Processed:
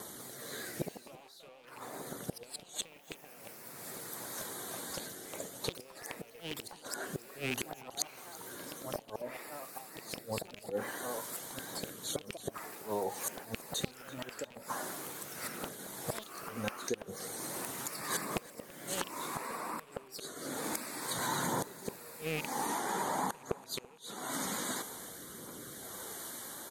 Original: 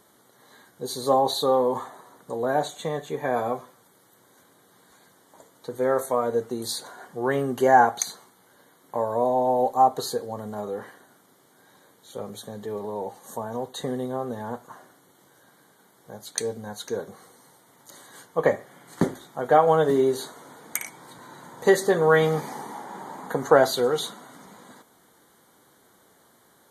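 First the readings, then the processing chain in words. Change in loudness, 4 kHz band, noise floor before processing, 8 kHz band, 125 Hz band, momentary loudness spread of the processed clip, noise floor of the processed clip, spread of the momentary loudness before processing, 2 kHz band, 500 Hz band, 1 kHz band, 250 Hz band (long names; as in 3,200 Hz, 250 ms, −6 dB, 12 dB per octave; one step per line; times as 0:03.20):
−15.0 dB, −6.0 dB, −59 dBFS, −2.5 dB, −11.0 dB, 10 LU, −56 dBFS, 18 LU, −9.5 dB, −18.0 dB, −15.5 dB, −12.0 dB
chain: loose part that buzzes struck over −35 dBFS, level −16 dBFS
drawn EQ curve 100 Hz 0 dB, 2,500 Hz +2 dB, 7,900 Hz +8 dB
downward compressor 6 to 1, threshold −40 dBFS, peak gain reduction 27 dB
pitch vibrato 8.4 Hz 47 cents
rotating-speaker cabinet horn 0.6 Hz
gate with flip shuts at −34 dBFS, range −27 dB
phase shifter 0.51 Hz, delay 3.8 ms, feedback 27%
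on a send: repeating echo 334 ms, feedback 37%, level −20 dB
on the sum: delay with pitch and tempo change per echo 196 ms, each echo +3 semitones, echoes 3, each echo −6 dB
level +11.5 dB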